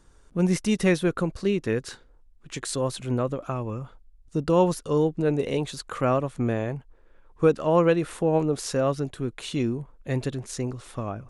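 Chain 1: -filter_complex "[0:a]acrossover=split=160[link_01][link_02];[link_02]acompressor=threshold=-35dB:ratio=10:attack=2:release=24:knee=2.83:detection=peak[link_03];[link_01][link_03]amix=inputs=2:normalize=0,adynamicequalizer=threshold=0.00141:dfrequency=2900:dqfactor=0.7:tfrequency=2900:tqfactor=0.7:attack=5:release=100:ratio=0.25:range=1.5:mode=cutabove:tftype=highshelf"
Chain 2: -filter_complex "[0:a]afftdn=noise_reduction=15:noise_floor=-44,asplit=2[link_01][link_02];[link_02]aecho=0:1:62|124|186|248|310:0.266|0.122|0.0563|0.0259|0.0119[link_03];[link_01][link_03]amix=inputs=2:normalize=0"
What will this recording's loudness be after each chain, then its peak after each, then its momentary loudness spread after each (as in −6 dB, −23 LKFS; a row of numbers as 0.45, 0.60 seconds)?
−34.5, −26.0 LKFS; −20.5, −7.5 dBFS; 6, 12 LU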